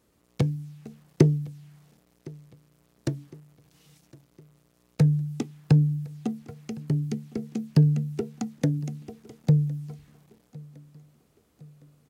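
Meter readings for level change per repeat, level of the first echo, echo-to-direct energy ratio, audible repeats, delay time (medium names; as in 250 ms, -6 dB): -6.0 dB, -23.0 dB, -22.0 dB, 3, 1060 ms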